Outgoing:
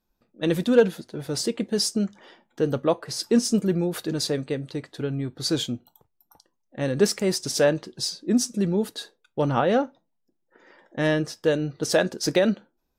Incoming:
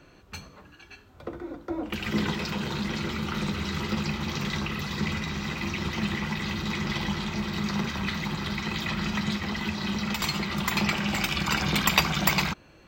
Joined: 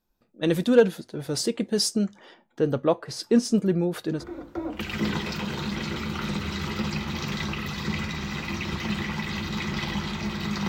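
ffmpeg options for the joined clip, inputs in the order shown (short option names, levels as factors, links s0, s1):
-filter_complex "[0:a]asettb=1/sr,asplit=3[s0][s1][s2];[s0]atrim=end=2.344[s3];[s1]atrim=start=2.34:end=4.24,asetpts=PTS-STARTPTS,afade=t=in:d=0.004:c=qsin,afade=t=out:st=1.896:d=0.004:c=qsin,equalizer=f=13000:t=o:w=2:g=-8[s4];[s2]atrim=start=4.236[s5];[s3][s4]acrossfade=d=0.004:c1=hsin:c2=qsin[s6];[s6][s5]acrossfade=d=0.004:c1=qsin:c2=hsin,apad=whole_dur=10.68,atrim=end=10.68,atrim=end=4.24,asetpts=PTS-STARTPTS[s7];[1:a]atrim=start=1.27:end=7.81,asetpts=PTS-STARTPTS[s8];[s7][s8]acrossfade=d=0.1:c1=tri:c2=tri"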